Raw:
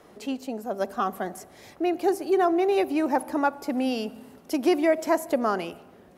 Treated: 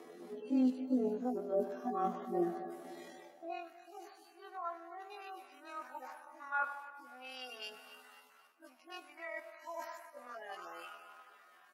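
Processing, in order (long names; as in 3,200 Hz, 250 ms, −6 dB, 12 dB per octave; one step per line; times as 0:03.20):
harmonic-percussive split with one part muted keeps harmonic
high-pass filter 110 Hz
reversed playback
downward compressor 12 to 1, threshold −33 dBFS, peak gain reduction 17 dB
reversed playback
time stretch by overlap-add 1.9×, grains 50 ms
high-pass filter sweep 290 Hz → 1,300 Hz, 0:03.11–0:03.67
on a send: repeating echo 257 ms, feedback 48%, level −17.5 dB
on the sum: level +1 dB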